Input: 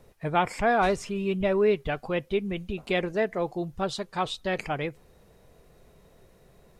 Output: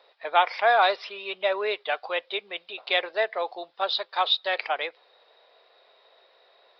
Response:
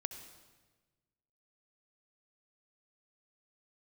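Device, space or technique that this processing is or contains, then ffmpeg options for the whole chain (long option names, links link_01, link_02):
musical greeting card: -af "aresample=11025,aresample=44100,highpass=frequency=580:width=0.5412,highpass=frequency=580:width=1.3066,equalizer=frequency=3700:width_type=o:width=0.26:gain=9.5,volume=4.5dB"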